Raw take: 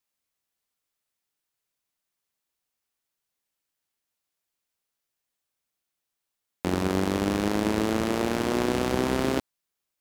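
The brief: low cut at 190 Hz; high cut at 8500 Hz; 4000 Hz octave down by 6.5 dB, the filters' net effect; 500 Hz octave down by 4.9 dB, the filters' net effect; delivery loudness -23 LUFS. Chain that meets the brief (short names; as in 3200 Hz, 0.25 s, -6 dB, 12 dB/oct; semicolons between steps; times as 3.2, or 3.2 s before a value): HPF 190 Hz; LPF 8500 Hz; bell 500 Hz -6.5 dB; bell 4000 Hz -8.5 dB; gain +7 dB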